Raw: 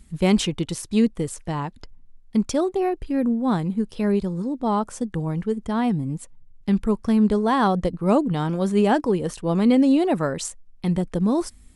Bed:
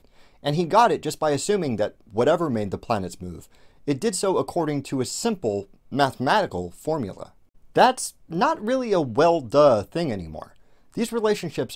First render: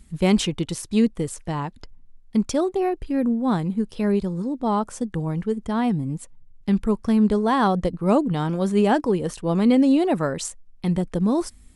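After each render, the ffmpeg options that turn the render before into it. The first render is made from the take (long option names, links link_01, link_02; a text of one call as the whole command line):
ffmpeg -i in.wav -af anull out.wav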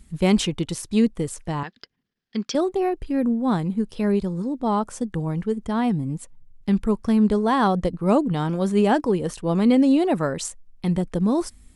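ffmpeg -i in.wav -filter_complex "[0:a]asettb=1/sr,asplit=3[link_01][link_02][link_03];[link_01]atrim=end=1.634[link_04];[link_02]atrim=start=1.63:end=2.55,asetpts=PTS-STARTPTS,afade=type=in:duration=0.004:curve=qsin,afade=type=out:start_time=0.916:duration=0.004:curve=qsin,highpass=270,equalizer=frequency=300:width_type=q:width=4:gain=-6,equalizer=frequency=600:width_type=q:width=4:gain=-7,equalizer=frequency=910:width_type=q:width=4:gain=-9,equalizer=frequency=1700:width_type=q:width=4:gain=8,equalizer=frequency=3200:width_type=q:width=4:gain=6,equalizer=frequency=4900:width_type=q:width=4:gain=7,lowpass=frequency=5800:width=0.5412,lowpass=frequency=5800:width=1.3066[link_05];[link_03]atrim=start=2.546[link_06];[link_04][link_05]acrossfade=duration=0.004:curve1=hsin:curve2=qsin[link_07];[link_07][link_06]acrossfade=duration=0.004:curve1=qsin:curve2=hsin" out.wav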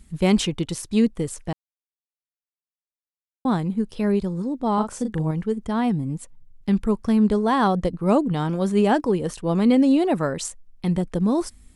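ffmpeg -i in.wav -filter_complex "[0:a]asettb=1/sr,asplit=3[link_01][link_02][link_03];[link_01]atrim=end=4.744[link_04];[link_02]atrim=start=4.74:end=5.31,asetpts=PTS-STARTPTS,afade=type=in:duration=0.004:curve=qsin,afade=type=out:start_time=0.566:duration=0.004:curve=qsin,asplit=2[link_05][link_06];[link_06]adelay=38,volume=-6dB[link_07];[link_05][link_07]amix=inputs=2:normalize=0,atrim=end_sample=25137[link_08];[link_03]atrim=start=5.306[link_09];[link_04][link_08]acrossfade=duration=0.004:curve1=hsin:curve2=qsin[link_10];[link_10][link_09]acrossfade=duration=0.004:curve1=qsin:curve2=hsin,asplit=3[link_11][link_12][link_13];[link_11]atrim=end=1.53,asetpts=PTS-STARTPTS,afade=type=out:start_time=1.526:duration=0.004:curve=hsin[link_14];[link_12]atrim=start=1.53:end=3.45,asetpts=PTS-STARTPTS,volume=0[link_15];[link_13]atrim=start=3.45,asetpts=PTS-STARTPTS,afade=type=in:duration=0.004:curve=hsin[link_16];[link_14][link_15][link_16]concat=n=3:v=0:a=1" out.wav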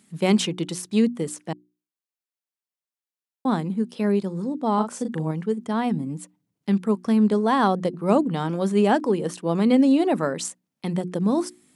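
ffmpeg -i in.wav -af "highpass=frequency=160:width=0.5412,highpass=frequency=160:width=1.3066,bandreject=frequency=60:width_type=h:width=6,bandreject=frequency=120:width_type=h:width=6,bandreject=frequency=180:width_type=h:width=6,bandreject=frequency=240:width_type=h:width=6,bandreject=frequency=300:width_type=h:width=6,bandreject=frequency=360:width_type=h:width=6" out.wav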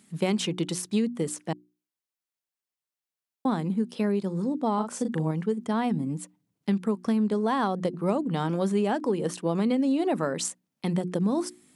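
ffmpeg -i in.wav -af "acompressor=threshold=-21dB:ratio=10" out.wav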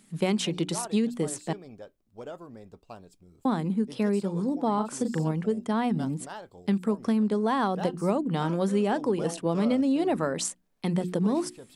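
ffmpeg -i in.wav -i bed.wav -filter_complex "[1:a]volume=-21dB[link_01];[0:a][link_01]amix=inputs=2:normalize=0" out.wav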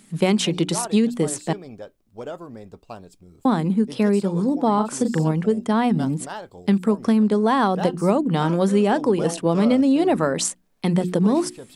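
ffmpeg -i in.wav -af "volume=7dB" out.wav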